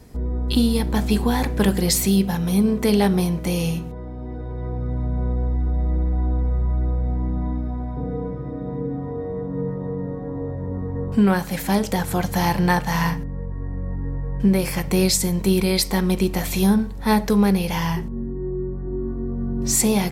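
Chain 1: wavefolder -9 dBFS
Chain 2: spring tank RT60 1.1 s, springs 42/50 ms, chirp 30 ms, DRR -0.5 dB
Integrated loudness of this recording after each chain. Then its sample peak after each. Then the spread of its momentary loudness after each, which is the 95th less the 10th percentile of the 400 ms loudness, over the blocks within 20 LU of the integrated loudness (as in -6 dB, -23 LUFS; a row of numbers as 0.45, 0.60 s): -22.5, -20.0 LUFS; -9.0, -2.0 dBFS; 11, 11 LU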